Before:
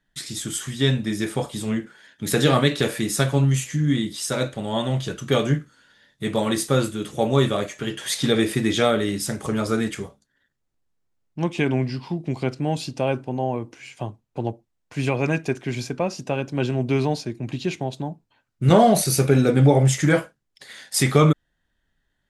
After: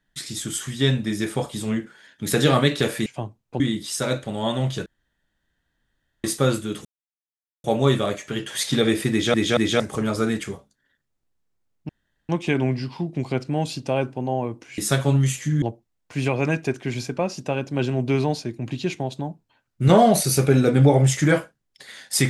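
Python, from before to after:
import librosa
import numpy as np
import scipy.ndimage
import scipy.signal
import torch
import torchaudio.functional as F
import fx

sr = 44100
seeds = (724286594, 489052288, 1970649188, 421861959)

y = fx.edit(x, sr, fx.swap(start_s=3.06, length_s=0.84, other_s=13.89, other_length_s=0.54),
    fx.room_tone_fill(start_s=5.16, length_s=1.38),
    fx.insert_silence(at_s=7.15, length_s=0.79),
    fx.stutter_over(start_s=8.62, slice_s=0.23, count=3),
    fx.insert_room_tone(at_s=11.4, length_s=0.4), tone=tone)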